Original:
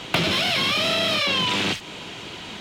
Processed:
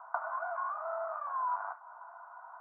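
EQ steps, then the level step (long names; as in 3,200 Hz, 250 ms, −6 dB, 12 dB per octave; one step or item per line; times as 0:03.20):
Chebyshev high-pass with heavy ripple 660 Hz, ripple 3 dB
Chebyshev low-pass with heavy ripple 1,500 Hz, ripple 6 dB
high-frequency loss of the air 77 metres
0.0 dB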